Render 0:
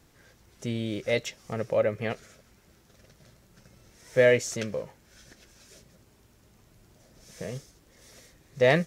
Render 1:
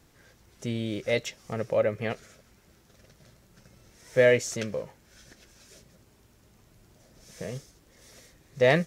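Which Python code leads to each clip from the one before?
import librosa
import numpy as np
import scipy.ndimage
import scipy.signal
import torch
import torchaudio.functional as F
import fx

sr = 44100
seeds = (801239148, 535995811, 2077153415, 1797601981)

y = x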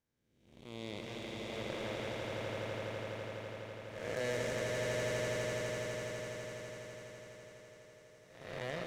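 y = fx.spec_blur(x, sr, span_ms=568.0)
y = fx.cheby_harmonics(y, sr, harmonics=(3, 5, 7), levels_db=(-23, -17, -14), full_scale_db=-18.5)
y = fx.echo_swell(y, sr, ms=83, loudest=8, wet_db=-5.0)
y = y * 10.0 ** (-7.0 / 20.0)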